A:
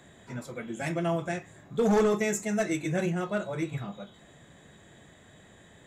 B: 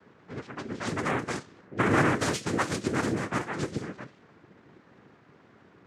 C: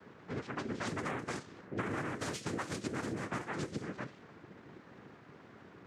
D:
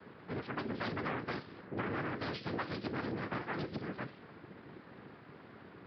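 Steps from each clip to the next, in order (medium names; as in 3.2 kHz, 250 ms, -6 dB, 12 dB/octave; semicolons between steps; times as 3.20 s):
noise-vocoded speech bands 3; level-controlled noise filter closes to 1.9 kHz, open at -25.5 dBFS
compression 10:1, threshold -36 dBFS, peak gain reduction 18 dB; trim +1.5 dB
resampled via 11.025 kHz; transformer saturation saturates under 640 Hz; trim +1.5 dB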